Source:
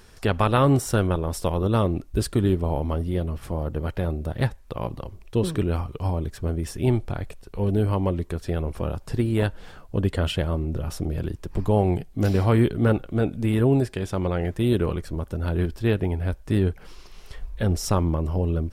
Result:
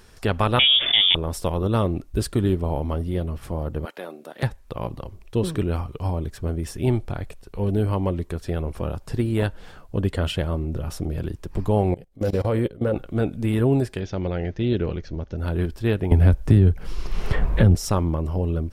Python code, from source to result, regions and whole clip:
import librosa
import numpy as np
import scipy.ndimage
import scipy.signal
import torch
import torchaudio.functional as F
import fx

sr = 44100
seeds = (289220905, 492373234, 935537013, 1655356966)

y = fx.chain(x, sr, fx.freq_invert(carrier_hz=3500),
    fx.env_flatten(amount_pct=70), at=(0.59, 1.15))
y = fx.chain(y, sr, fx.highpass(hz=230.0, slope=24),
    fx.low_shelf(hz=480.0, db=-10.0),
    fx.overload_stage(gain_db=18.5), at=(3.85, 4.43))
y = fx.chain(y, sr, fx.peak_eq(hz=520.0, db=14.0, octaves=0.32),
    fx.level_steps(step_db=21), at=(11.92, 12.96))
y = fx.chain(y, sr, fx.cheby1_lowpass(hz=6400.0, order=6),
    fx.peak_eq(hz=1100.0, db=-8.0, octaves=0.61), at=(14.0, 15.38))
y = fx.chain(y, sr, fx.low_shelf(hz=230.0, db=11.0),
    fx.band_squash(depth_pct=100), at=(16.11, 17.75))